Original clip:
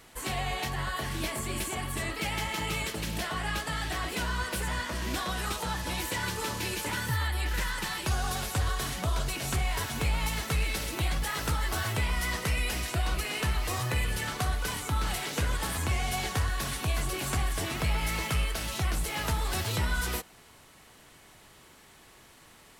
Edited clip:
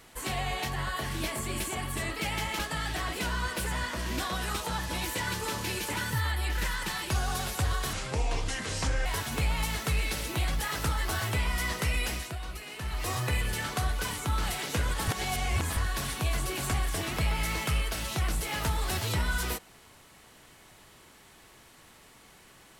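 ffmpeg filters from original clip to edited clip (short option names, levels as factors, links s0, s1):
-filter_complex "[0:a]asplit=8[s0][s1][s2][s3][s4][s5][s6][s7];[s0]atrim=end=2.592[s8];[s1]atrim=start=3.548:end=8.894[s9];[s2]atrim=start=8.89:end=9.69,asetpts=PTS-STARTPTS,asetrate=31311,aresample=44100,atrim=end_sample=49690,asetpts=PTS-STARTPTS[s10];[s3]atrim=start=9.686:end=13,asetpts=PTS-STARTPTS,afade=t=out:st=3.024:d=0.29:silence=0.354813[s11];[s4]atrim=start=13:end=13.44,asetpts=PTS-STARTPTS,volume=0.355[s12];[s5]atrim=start=13.44:end=15.712,asetpts=PTS-STARTPTS,afade=t=in:d=0.29:silence=0.354813[s13];[s6]atrim=start=15.708:end=16.402,asetpts=PTS-STARTPTS,areverse[s14];[s7]atrim=start=16.398[s15];[s8][s9]acrossfade=d=0.004:c1=hsin:c2=hsin[s16];[s16][s10]acrossfade=d=0.004:c1=hsin:c2=hsin[s17];[s11][s12][s13]concat=n=3:v=0:a=1[s18];[s17][s18]acrossfade=d=0.004:c1=hsin:c2=hsin[s19];[s19][s14]acrossfade=d=0.004:c1=hsin:c2=hsin[s20];[s20][s15]acrossfade=d=0.004:c1=hsin:c2=hsin"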